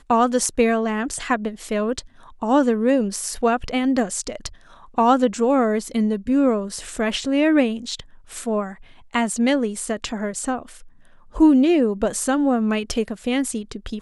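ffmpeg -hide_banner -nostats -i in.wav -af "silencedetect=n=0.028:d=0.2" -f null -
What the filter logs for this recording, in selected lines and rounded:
silence_start: 2.00
silence_end: 2.42 | silence_duration: 0.42
silence_start: 4.48
silence_end: 4.98 | silence_duration: 0.50
silence_start: 8.00
silence_end: 8.32 | silence_duration: 0.31
silence_start: 8.73
silence_end: 9.14 | silence_duration: 0.41
silence_start: 10.71
silence_end: 11.36 | silence_duration: 0.65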